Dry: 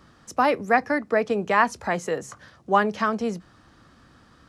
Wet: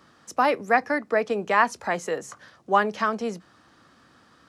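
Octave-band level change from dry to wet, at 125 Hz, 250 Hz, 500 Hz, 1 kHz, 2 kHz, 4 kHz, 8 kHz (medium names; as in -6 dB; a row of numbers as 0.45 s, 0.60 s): -5.0 dB, -3.5 dB, -1.0 dB, -0.5 dB, 0.0 dB, 0.0 dB, 0.0 dB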